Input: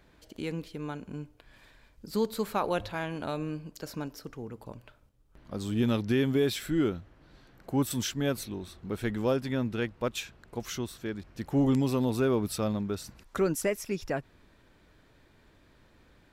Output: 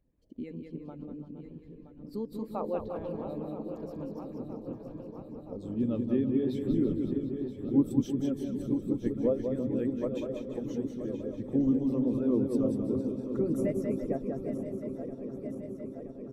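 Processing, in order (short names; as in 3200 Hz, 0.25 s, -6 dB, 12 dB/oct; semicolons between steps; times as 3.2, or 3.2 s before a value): regenerating reverse delay 0.486 s, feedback 82%, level -7.5 dB; high shelf 8900 Hz +6.5 dB; notch 1500 Hz, Q 9.3; small resonant body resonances 260/520 Hz, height 8 dB, ringing for 40 ms; on a send: bouncing-ball echo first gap 0.19 s, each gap 0.8×, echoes 5; on the sum: harmonic-percussive split harmonic -11 dB; tilt -1.5 dB/oct; in parallel at +1.5 dB: compressor, threshold -35 dBFS, peak gain reduction 17 dB; on the sum: spectral expander 1.5:1; gain -4 dB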